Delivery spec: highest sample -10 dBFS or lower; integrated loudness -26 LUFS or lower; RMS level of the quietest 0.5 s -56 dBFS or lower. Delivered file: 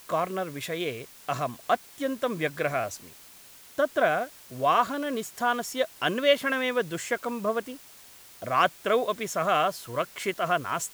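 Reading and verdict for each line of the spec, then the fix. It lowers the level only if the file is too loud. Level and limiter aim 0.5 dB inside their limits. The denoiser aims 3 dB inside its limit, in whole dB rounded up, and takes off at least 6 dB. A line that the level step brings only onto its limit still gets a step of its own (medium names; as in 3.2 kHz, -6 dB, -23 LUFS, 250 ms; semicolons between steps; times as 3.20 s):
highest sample -8.0 dBFS: fail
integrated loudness -28.0 LUFS: pass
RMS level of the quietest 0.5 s -51 dBFS: fail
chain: noise reduction 8 dB, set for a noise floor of -51 dBFS; peak limiter -10.5 dBFS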